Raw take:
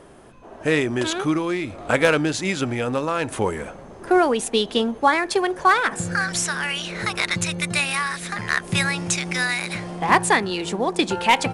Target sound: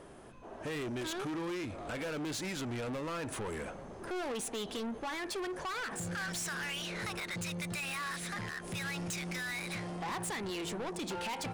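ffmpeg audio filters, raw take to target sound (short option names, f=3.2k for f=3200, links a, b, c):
-af "alimiter=limit=-14.5dB:level=0:latency=1:release=86,asoftclip=type=tanh:threshold=-29.5dB,volume=-5.5dB"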